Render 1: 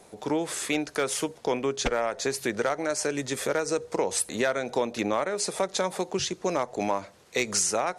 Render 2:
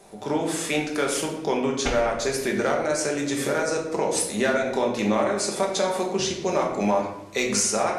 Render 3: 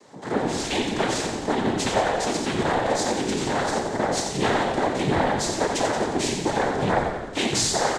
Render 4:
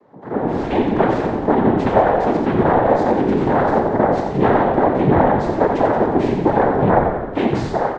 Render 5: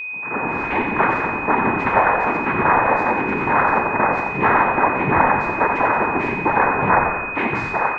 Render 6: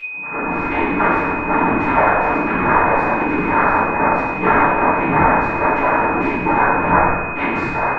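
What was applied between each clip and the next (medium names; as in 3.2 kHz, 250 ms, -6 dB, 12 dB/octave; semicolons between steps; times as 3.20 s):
simulated room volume 300 m³, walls mixed, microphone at 1.2 m
noise-vocoded speech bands 6; on a send: frequency-shifting echo 88 ms, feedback 61%, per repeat -55 Hz, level -7 dB
low-pass 1.2 kHz 12 dB/octave; level rider gain up to 12 dB
high-order bell 1.5 kHz +14 dB; whistle 2.5 kHz -19 dBFS; trim -7 dB
simulated room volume 66 m³, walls mixed, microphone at 2.5 m; trim -9.5 dB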